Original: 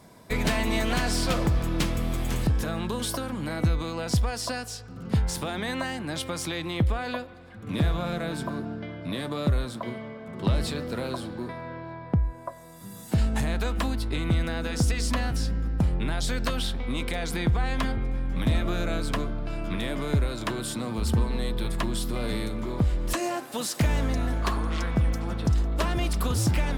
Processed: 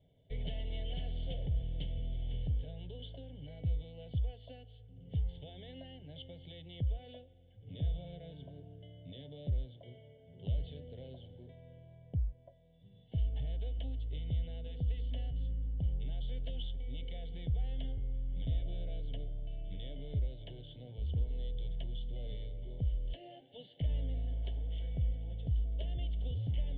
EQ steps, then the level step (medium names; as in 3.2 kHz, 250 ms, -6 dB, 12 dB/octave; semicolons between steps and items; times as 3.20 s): cascade formant filter i; static phaser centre 540 Hz, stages 4; static phaser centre 1.6 kHz, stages 8; +6.0 dB